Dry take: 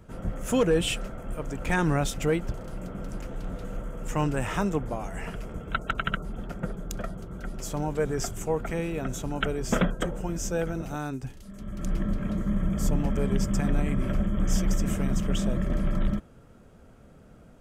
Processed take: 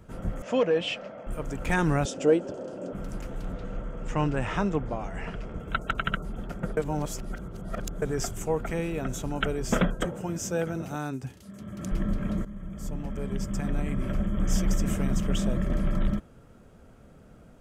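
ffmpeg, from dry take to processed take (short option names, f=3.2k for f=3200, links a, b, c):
-filter_complex "[0:a]asettb=1/sr,asplit=3[a][b][c];[a]atrim=end=0.424[d];[b]atrim=start=0.42:end=1.27,asetpts=PTS-STARTPTS,afade=t=in:d=0.004:c=qsin,afade=t=out:st=0.846:d=0.004:c=qsin,highpass=260,equalizer=f=370:t=q:w=4:g=-9,equalizer=f=590:t=q:w=4:g=7,equalizer=f=1.4k:t=q:w=4:g=-5,equalizer=f=3.8k:t=q:w=4:g=-5,lowpass=f=4.9k:w=0.5412,lowpass=f=4.9k:w=1.3066[e];[c]atrim=start=1.266[f];[d][e]acrossfade=d=0.004:c1=hsin:c2=qsin[g];[g][f]acrossfade=d=0.004:c1=qsin:c2=hsin,asettb=1/sr,asplit=3[h][i][j];[h]atrim=end=2.054[k];[i]atrim=start=2.05:end=2.93,asetpts=PTS-STARTPTS,afade=t=in:d=0.004:c=qsin,afade=t=out:st=0.876:d=0.004:c=qsin,highpass=230,equalizer=f=270:t=q:w=4:g=8,equalizer=f=390:t=q:w=4:g=6,equalizer=f=560:t=q:w=4:g=10,equalizer=f=1.2k:t=q:w=4:g=-5,equalizer=f=2.1k:t=q:w=4:g=-10,equalizer=f=3.9k:t=q:w=4:g=-5,lowpass=f=7.7k:w=0.5412,lowpass=f=7.7k:w=1.3066[l];[j]atrim=start=2.926[m];[k][l]acrossfade=d=0.004:c1=hsin:c2=qsin[n];[n][m]acrossfade=d=0.004:c1=qsin:c2=hsin,asettb=1/sr,asplit=3[o][p][q];[o]atrim=end=3.524[r];[p]atrim=start=3.52:end=5.6,asetpts=PTS-STARTPTS,afade=t=in:d=0.004:c=qsin,afade=t=out:st=2.076:d=0.004:c=qsin,lowpass=4.9k[s];[q]atrim=start=5.596[t];[r][s]acrossfade=d=0.004:c1=hsin:c2=qsin[u];[u][t]acrossfade=d=0.004:c1=qsin:c2=hsin,asettb=1/sr,asplit=3[v][w][x];[v]atrim=end=10.054[y];[w]atrim=start=10.05:end=11.92,asetpts=PTS-STARTPTS,afade=t=in:d=0.004:c=qsin,afade=t=out:st=1.866:d=0.004:c=qsin,highpass=f=76:w=0.5412,highpass=f=76:w=1.3066[z];[x]atrim=start=11.916[aa];[y][z]acrossfade=d=0.004:c1=hsin:c2=qsin[ab];[ab][aa]acrossfade=d=0.004:c1=qsin:c2=hsin,asplit=4[ac][ad][ae][af];[ac]atrim=end=6.772[ag];[ad]atrim=start=6.768:end=8.022,asetpts=PTS-STARTPTS,areverse[ah];[ae]atrim=start=8.018:end=12.45,asetpts=PTS-STARTPTS,afade=t=out:st=4.428:d=0.004:c=hsin:silence=0.177828[ai];[af]atrim=start=12.45,asetpts=PTS-STARTPTS,afade=t=in:d=2.22:silence=0.177828[aj];[ag][ah]acrossfade=d=0.004:c1=hsin:c2=hsin[ak];[ai][aj]concat=n=2:v=0:a=1[al];[ak][al]acrossfade=d=0.004:c1=hsin:c2=hsin"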